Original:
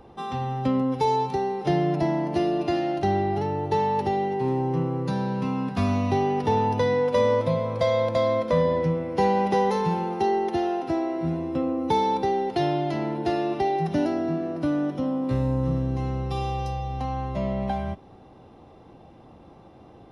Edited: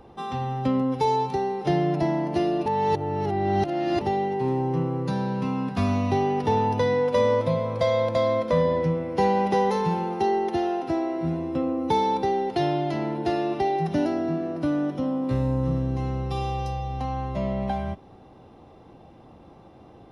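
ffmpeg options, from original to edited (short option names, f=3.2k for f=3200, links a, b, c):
-filter_complex "[0:a]asplit=3[a][b][c];[a]atrim=end=2.662[d];[b]atrim=start=2.658:end=4.012,asetpts=PTS-STARTPTS,areverse[e];[c]atrim=start=4.008[f];[d][e]acrossfade=d=0.004:c1=hsin:c2=hsin[g];[g][f]acrossfade=d=0.004:c1=hsin:c2=hsin"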